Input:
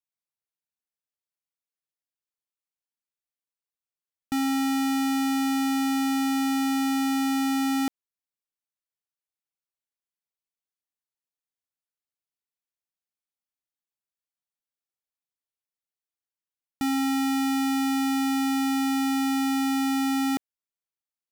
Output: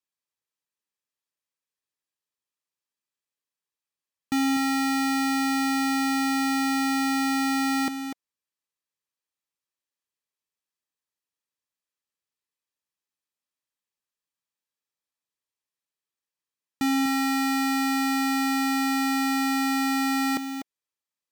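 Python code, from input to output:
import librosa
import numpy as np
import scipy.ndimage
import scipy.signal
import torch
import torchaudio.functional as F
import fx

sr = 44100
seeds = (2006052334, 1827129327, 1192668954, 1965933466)

p1 = fx.low_shelf(x, sr, hz=490.0, db=-3.5)
p2 = fx.notch_comb(p1, sr, f0_hz=720.0)
p3 = np.repeat(scipy.signal.resample_poly(p2, 1, 2), 2)[:len(p2)]
p4 = p3 + fx.echo_single(p3, sr, ms=246, db=-9.5, dry=0)
y = F.gain(torch.from_numpy(p4), 4.5).numpy()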